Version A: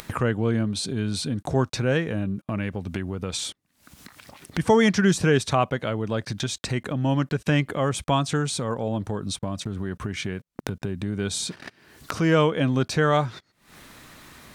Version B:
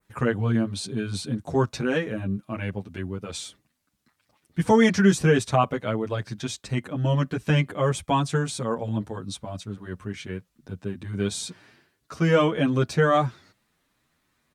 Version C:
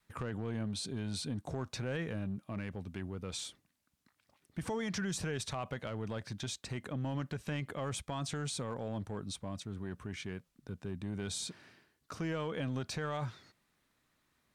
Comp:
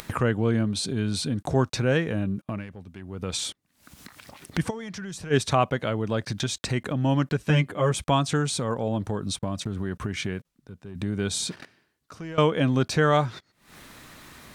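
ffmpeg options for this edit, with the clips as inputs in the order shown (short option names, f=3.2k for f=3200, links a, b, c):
-filter_complex "[2:a]asplit=4[a][b][c][d];[0:a]asplit=6[e][f][g][h][i][j];[e]atrim=end=2.67[k];[a]atrim=start=2.43:end=3.29[l];[f]atrim=start=3.05:end=4.71[m];[b]atrim=start=4.67:end=5.34[n];[g]atrim=start=5.3:end=7.422[o];[1:a]atrim=start=7.418:end=7.942[p];[h]atrim=start=7.938:end=10.452[q];[c]atrim=start=10.448:end=10.952[r];[i]atrim=start=10.948:end=11.652[s];[d]atrim=start=11.648:end=12.382[t];[j]atrim=start=12.378[u];[k][l]acrossfade=d=0.24:c1=tri:c2=tri[v];[v][m]acrossfade=d=0.24:c1=tri:c2=tri[w];[w][n]acrossfade=d=0.04:c1=tri:c2=tri[x];[x][o]acrossfade=d=0.04:c1=tri:c2=tri[y];[y][p]acrossfade=d=0.004:c1=hsin:c2=hsin[z];[z][q]acrossfade=d=0.004:c1=hsin:c2=hsin[aa];[aa][r]acrossfade=d=0.004:c1=hsin:c2=hsin[ab];[ab][s]acrossfade=d=0.004:c1=hsin:c2=hsin[ac];[ac][t]acrossfade=d=0.004:c1=hsin:c2=hsin[ad];[ad][u]acrossfade=d=0.004:c1=hsin:c2=hsin"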